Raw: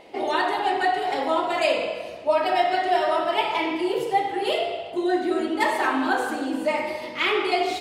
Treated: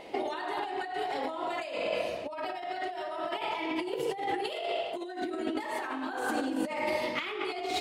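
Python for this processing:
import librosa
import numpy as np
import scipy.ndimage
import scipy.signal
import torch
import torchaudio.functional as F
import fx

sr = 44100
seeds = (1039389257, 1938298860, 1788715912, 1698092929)

y = fx.over_compress(x, sr, threshold_db=-30.0, ratio=-1.0)
y = fx.highpass(y, sr, hz=430.0, slope=6, at=(4.49, 5.22))
y = y * librosa.db_to_amplitude(-4.0)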